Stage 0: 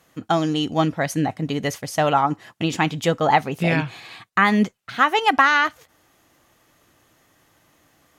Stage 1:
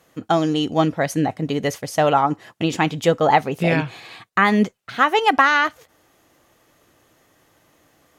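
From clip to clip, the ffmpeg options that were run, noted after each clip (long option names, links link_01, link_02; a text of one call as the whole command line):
ffmpeg -i in.wav -af "equalizer=frequency=470:width=1.3:gain=4.5" out.wav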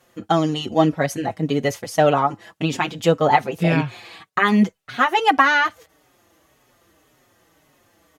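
ffmpeg -i in.wav -filter_complex "[0:a]asplit=2[link_01][link_02];[link_02]adelay=5.1,afreqshift=-1.8[link_03];[link_01][link_03]amix=inputs=2:normalize=1,volume=2.5dB" out.wav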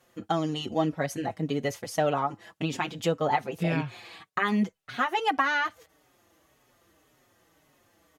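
ffmpeg -i in.wav -af "acompressor=threshold=-23dB:ratio=1.5,volume=-5.5dB" out.wav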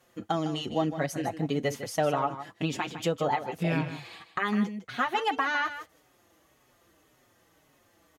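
ffmpeg -i in.wav -filter_complex "[0:a]alimiter=limit=-16dB:level=0:latency=1:release=416,asplit=2[link_01][link_02];[link_02]aecho=0:1:155:0.266[link_03];[link_01][link_03]amix=inputs=2:normalize=0" out.wav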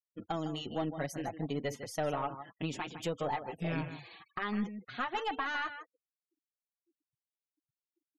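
ffmpeg -i in.wav -af "aeval=exprs='(tanh(8.91*val(0)+0.3)-tanh(0.3))/8.91':channel_layout=same,afftfilt=real='re*gte(hypot(re,im),0.00447)':imag='im*gte(hypot(re,im),0.00447)':win_size=1024:overlap=0.75,volume=-5.5dB" out.wav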